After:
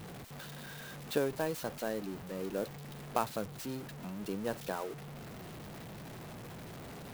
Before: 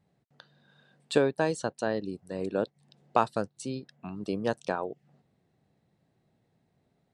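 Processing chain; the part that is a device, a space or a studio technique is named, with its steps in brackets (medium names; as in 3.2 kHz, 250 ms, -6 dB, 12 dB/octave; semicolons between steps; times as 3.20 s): early CD player with a faulty converter (jump at every zero crossing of -32 dBFS; sampling jitter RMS 0.033 ms); trim -8.5 dB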